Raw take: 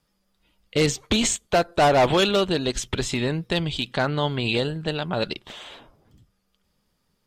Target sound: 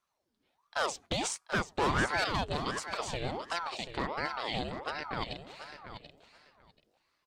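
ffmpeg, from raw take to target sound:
-af "equalizer=f=12000:t=o:w=0.22:g=-8,aecho=1:1:735|1470:0.316|0.0506,aeval=exprs='val(0)*sin(2*PI*710*n/s+710*0.7/1.4*sin(2*PI*1.4*n/s))':c=same,volume=0.376"

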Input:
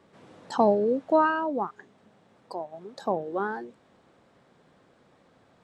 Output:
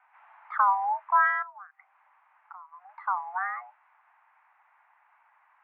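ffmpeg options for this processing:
-filter_complex "[0:a]asettb=1/sr,asplit=3[s0][s1][s2];[s0]atrim=end=1.424[s3];[s1]atrim=start=1.42:end=2.89,asetpts=PTS-STARTPTS,afade=t=in:d=0.004:c=qsin,afade=t=out:st=1.466:d=0.004:c=qsin,acompressor=threshold=0.00794:ratio=8[s4];[s2]atrim=start=2.886[s5];[s3][s4]acrossfade=d=0.004:c1=hsin:c2=qsin[s6];[s6][s5]acrossfade=d=0.004:c1=qsin:c2=hsin,highpass=f=450:t=q:w=0.5412,highpass=f=450:t=q:w=1.307,lowpass=f=2100:t=q:w=0.5176,lowpass=f=2100:t=q:w=0.7071,lowpass=f=2100:t=q:w=1.932,afreqshift=370"

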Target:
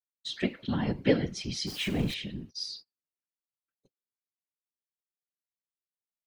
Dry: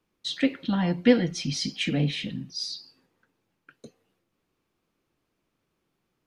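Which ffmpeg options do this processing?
-filter_complex "[0:a]asettb=1/sr,asplit=3[s0][s1][s2];[s0]atrim=end=1.674[s3];[s1]atrim=start=1.67:end=2.14,asetpts=PTS-STARTPTS,afade=t=in:d=0.004:c=qsin,afade=t=out:st=0.466:d=0.004:c=qsin,aeval=exprs='val(0)+0.5*0.0251*sgn(val(0))':c=same[s4];[s2]atrim=start=2.136[s5];[s3][s4]acrossfade=d=0.004:c1=hsin:c2=qsin[s6];[s6][s5]acrossfade=d=0.004:c1=qsin:c2=hsin,agate=range=0.0178:threshold=0.01:ratio=16:detection=peak,afftfilt=real='hypot(re,im)*cos(2*PI*random(0))':imag='hypot(re,im)*sin(2*PI*random(1))':win_size=512:overlap=0.75,volume=1.12"

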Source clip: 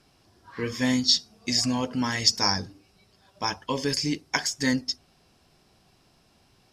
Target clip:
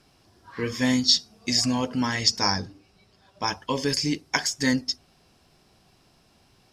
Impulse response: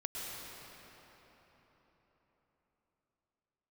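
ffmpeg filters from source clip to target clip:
-filter_complex "[0:a]asettb=1/sr,asplit=3[s0][s1][s2];[s0]atrim=end=2.064[s3];[s1]atrim=start=2.06:end=3.48,asetpts=PTS-STARTPTS,afade=t=in:d=0.004:c=qsin,afade=t=out:st=1.416:d=0.004:c=qsin,highshelf=f=8700:g=-9[s4];[s2]atrim=start=3.476[s5];[s3][s4]acrossfade=d=0.004:c1=hsin:c2=qsin[s6];[s6][s5]acrossfade=d=0.004:c1=qsin:c2=hsin,volume=1.19"

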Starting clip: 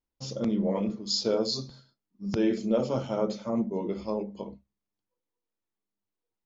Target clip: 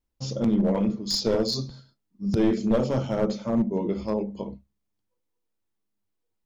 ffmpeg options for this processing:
-af "aeval=exprs='clip(val(0),-1,0.0668)':c=same,lowshelf=f=180:g=8,volume=1.33"

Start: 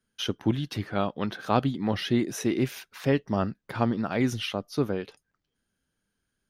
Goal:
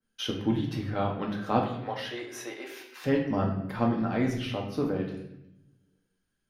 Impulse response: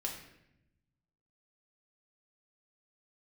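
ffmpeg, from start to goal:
-filter_complex "[0:a]asettb=1/sr,asplit=3[s0][s1][s2];[s0]atrim=end=1.634[s3];[s1]atrim=start=1.63:end=3.02,asetpts=PTS-STARTPTS,afade=t=in:d=0.004:c=qsin,afade=t=out:st=1.386:d=0.004:c=qsin,highpass=f=490:w=0.5412,highpass=f=490:w=1.3066[s4];[s2]atrim=start=3.016[s5];[s3][s4]acrossfade=d=0.004:c1=hsin:c2=qsin[s6];[s6][s5]acrossfade=d=0.004:c1=qsin:c2=hsin[s7];[1:a]atrim=start_sample=2205[s8];[s7][s8]afir=irnorm=-1:irlink=0,adynamicequalizer=threshold=0.00501:dfrequency=2500:dqfactor=0.7:tfrequency=2500:tqfactor=0.7:attack=5:release=100:ratio=0.375:range=3.5:mode=cutabove:tftype=highshelf,volume=0.794"

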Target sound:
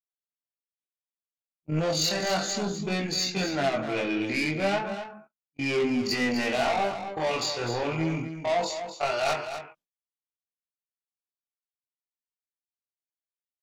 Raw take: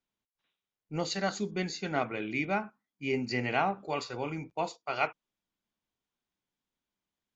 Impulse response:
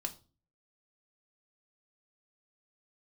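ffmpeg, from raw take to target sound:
-filter_complex "[0:a]agate=range=0.01:threshold=0.00891:ratio=16:detection=peak,equalizer=f=640:t=o:w=0.4:g=7,asplit=2[s0][s1];[s1]acompressor=threshold=0.0158:ratio=10,volume=0.944[s2];[s0][s2]amix=inputs=2:normalize=0,atempo=0.54,asoftclip=type=tanh:threshold=0.0376,flanger=delay=20:depth=5.9:speed=0.33,aecho=1:1:252:0.335,adynamicequalizer=threshold=0.00398:dfrequency=2900:dqfactor=0.7:tfrequency=2900:tqfactor=0.7:attack=5:release=100:ratio=0.375:range=2:mode=boostabove:tftype=highshelf,volume=2.66"

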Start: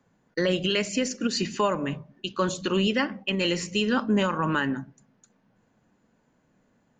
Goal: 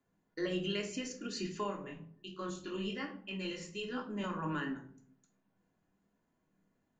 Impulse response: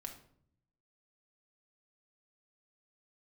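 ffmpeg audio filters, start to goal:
-filter_complex "[0:a]asettb=1/sr,asplit=3[s0][s1][s2];[s0]atrim=end=1.634[s3];[s1]atrim=start=1.63:end=4.24,asetpts=PTS-STARTPTS,afade=t=in:d=0.004:c=qsin,afade=t=out:st=2.606:d=0.004:c=qsin,flanger=delay=20:depth=4.3:speed=1.3[s4];[s2]atrim=start=4.236[s5];[s3][s4]acrossfade=d=0.004:c1=hsin:c2=qsin[s6];[s6][s5]acrossfade=d=0.004:c1=qsin:c2=hsin[s7];[1:a]atrim=start_sample=2205,asetrate=61740,aresample=44100[s8];[s7][s8]afir=irnorm=-1:irlink=0,volume=0.501"

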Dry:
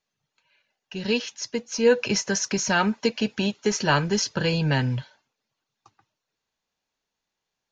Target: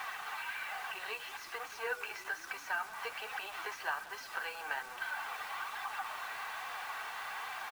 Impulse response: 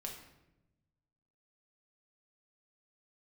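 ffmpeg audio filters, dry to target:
-filter_complex "[0:a]aeval=exprs='val(0)+0.5*0.0447*sgn(val(0))':c=same,highpass=f=920:w=0.5412,highpass=f=920:w=1.3066,equalizer=f=7000:w=0.42:g=-8,aecho=1:1:2.6:0.46,acompressor=threshold=0.0178:ratio=8,flanger=delay=3.8:depth=7:regen=46:speed=1.2:shape=sinusoidal,adynamicsmooth=sensitivity=1:basefreq=1800,acrusher=bits=9:mix=0:aa=0.000001,asplit=7[s0][s1][s2][s3][s4][s5][s6];[s1]adelay=180,afreqshift=-48,volume=0.119[s7];[s2]adelay=360,afreqshift=-96,volume=0.075[s8];[s3]adelay=540,afreqshift=-144,volume=0.0473[s9];[s4]adelay=720,afreqshift=-192,volume=0.0299[s10];[s5]adelay=900,afreqshift=-240,volume=0.0186[s11];[s6]adelay=1080,afreqshift=-288,volume=0.0117[s12];[s0][s7][s8][s9][s10][s11][s12]amix=inputs=7:normalize=0,volume=2.66"

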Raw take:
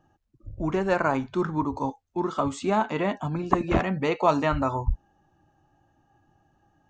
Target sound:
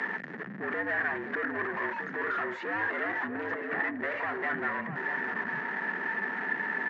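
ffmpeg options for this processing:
-filter_complex "[0:a]aeval=exprs='val(0)+0.5*0.0335*sgn(val(0))':c=same,highpass=84,alimiter=limit=0.178:level=0:latency=1:release=356,aresample=16000,asoftclip=type=tanh:threshold=0.0266,aresample=44100,afreqshift=100,lowpass=f=1800:t=q:w=11,acompressor=mode=upward:threshold=0.00891:ratio=2.5,asplit=2[s0][s1];[s1]adelay=641.4,volume=0.398,highshelf=f=4000:g=-14.4[s2];[s0][s2]amix=inputs=2:normalize=0,volume=0.668"

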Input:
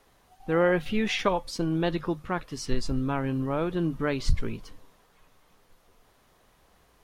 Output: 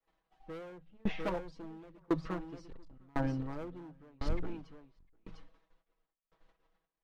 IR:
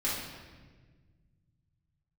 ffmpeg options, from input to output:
-filter_complex "[0:a]agate=range=0.0224:threshold=0.00112:ratio=16:detection=peak,lowpass=3500,equalizer=f=100:t=o:w=0.86:g=-9.5,aecho=1:1:6.2:0.99,bandreject=f=55.67:t=h:w=4,bandreject=f=111.34:t=h:w=4,bandreject=f=167.01:t=h:w=4,acrossover=split=360|1100[s0][s1][s2];[s2]acompressor=threshold=0.00501:ratio=10[s3];[s0][s1][s3]amix=inputs=3:normalize=0,asoftclip=type=hard:threshold=0.0596,asplit=2[s4][s5];[s5]aecho=0:1:702:0.335[s6];[s4][s6]amix=inputs=2:normalize=0,aeval=exprs='val(0)*pow(10,-35*if(lt(mod(0.95*n/s,1),2*abs(0.95)/1000),1-mod(0.95*n/s,1)/(2*abs(0.95)/1000),(mod(0.95*n/s,1)-2*abs(0.95)/1000)/(1-2*abs(0.95)/1000))/20)':c=same,volume=1.12"

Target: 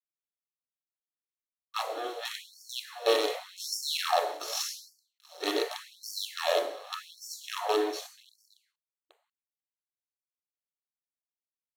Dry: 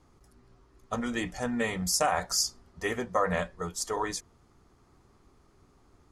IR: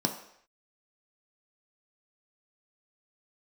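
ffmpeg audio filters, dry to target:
-filter_complex "[0:a]aeval=exprs='0.2*(cos(1*acos(clip(val(0)/0.2,-1,1)))-cos(1*PI/2))+0.0126*(cos(6*acos(clip(val(0)/0.2,-1,1)))-cos(6*PI/2))+0.00891*(cos(8*acos(clip(val(0)/0.2,-1,1)))-cos(8*PI/2))':c=same,atempo=0.52,asplit=2[s0][s1];[s1]acompressor=threshold=0.0158:ratio=16,volume=1.12[s2];[s0][s2]amix=inputs=2:normalize=0,highshelf=f=10000:g=-7,bandreject=f=50:t=h:w=6,bandreject=f=100:t=h:w=6,bandreject=f=150:t=h:w=6,bandreject=f=200:t=h:w=6,bandreject=f=250:t=h:w=6,bandreject=f=300:t=h:w=6,asplit=2[s3][s4];[s4]adelay=697,lowpass=f=3200:p=1,volume=0.0841,asplit=2[s5][s6];[s6]adelay=697,lowpass=f=3200:p=1,volume=0.38,asplit=2[s7][s8];[s8]adelay=697,lowpass=f=3200:p=1,volume=0.38[s9];[s3][s5][s7][s9]amix=inputs=4:normalize=0,flanger=delay=8.7:depth=5.4:regen=82:speed=0.58:shape=triangular,highpass=f=150:w=0.5412,highpass=f=150:w=1.3066,acrusher=bits=5:dc=4:mix=0:aa=0.000001,lowshelf=f=220:g=11[s10];[1:a]atrim=start_sample=2205,atrim=end_sample=6174,asetrate=32193,aresample=44100[s11];[s10][s11]afir=irnorm=-1:irlink=0,afftfilt=real='re*gte(b*sr/1024,270*pow(4500/270,0.5+0.5*sin(2*PI*0.86*pts/sr)))':imag='im*gte(b*sr/1024,270*pow(4500/270,0.5+0.5*sin(2*PI*0.86*pts/sr)))':win_size=1024:overlap=0.75,volume=0.596"

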